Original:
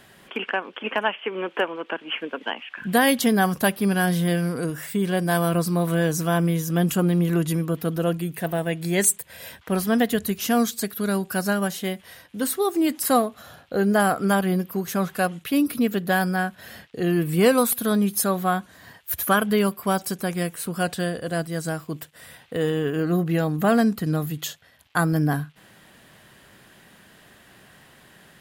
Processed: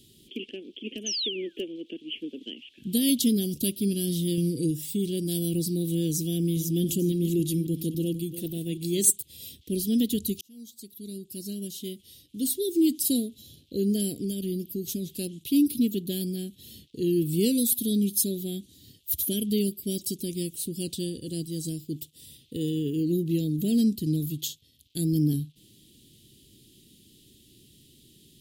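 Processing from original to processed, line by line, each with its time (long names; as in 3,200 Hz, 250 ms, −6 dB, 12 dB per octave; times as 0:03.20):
0:01.06–0:01.70: sound drawn into the spectrogram fall 930–6,500 Hz −29 dBFS
0:04.37–0:04.92: comb filter 6.1 ms
0:06.29–0:09.10: delay that plays each chunk backwards 276 ms, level −12 dB
0:10.41–0:12.63: fade in
0:14.14–0:15.16: downward compressor 3 to 1, threshold −22 dBFS
0:15.85–0:16.87: notch filter 5,000 Hz, Q 9.1
whole clip: elliptic band-stop filter 350–3,400 Hz, stop band 80 dB; parametric band 180 Hz −5.5 dB 0.33 octaves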